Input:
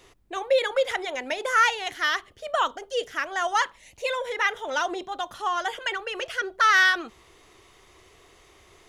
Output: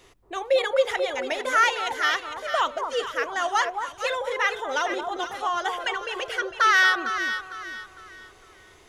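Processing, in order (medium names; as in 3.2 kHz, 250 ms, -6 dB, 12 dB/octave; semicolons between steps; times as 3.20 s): echo whose repeats swap between lows and highs 227 ms, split 1.1 kHz, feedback 58%, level -4 dB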